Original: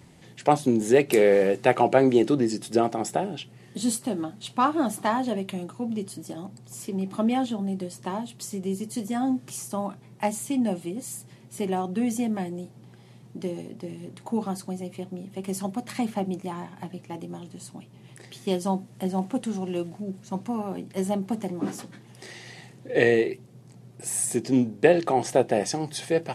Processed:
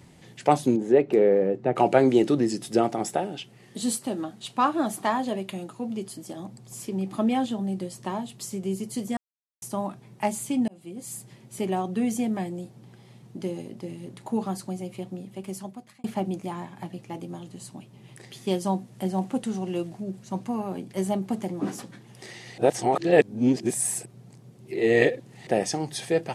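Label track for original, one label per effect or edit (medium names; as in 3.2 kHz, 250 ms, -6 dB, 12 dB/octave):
0.750000	1.750000	band-pass filter 530 Hz -> 170 Hz, Q 0.52
3.090000	6.400000	bass shelf 110 Hz -11 dB
9.170000	9.620000	mute
10.680000	11.170000	fade in
15.140000	16.040000	fade out
22.580000	25.470000	reverse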